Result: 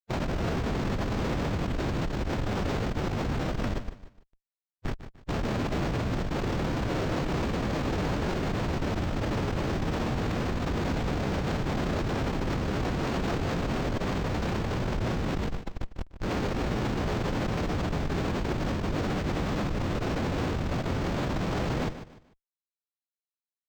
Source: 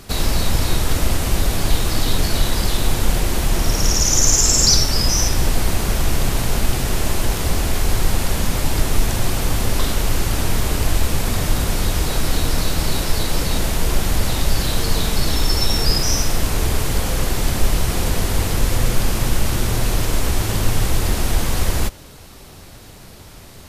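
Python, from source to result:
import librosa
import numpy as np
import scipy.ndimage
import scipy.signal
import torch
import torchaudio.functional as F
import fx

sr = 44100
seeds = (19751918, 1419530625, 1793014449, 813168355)

y = fx.octave_divider(x, sr, octaves=1, level_db=1.0)
y = scipy.signal.sosfilt(scipy.signal.butter(2, 190.0, 'highpass', fs=sr, output='sos'), y)
y = fx.over_compress(y, sr, threshold_db=-25.0, ratio=-0.5)
y = fx.schmitt(y, sr, flips_db=-19.5)
y = fx.echo_feedback(y, sr, ms=149, feedback_pct=31, wet_db=-12.0)
y = fx.pitch_keep_formants(y, sr, semitones=-3.5)
y = np.interp(np.arange(len(y)), np.arange(len(y))[::4], y[::4])
y = y * librosa.db_to_amplitude(-2.5)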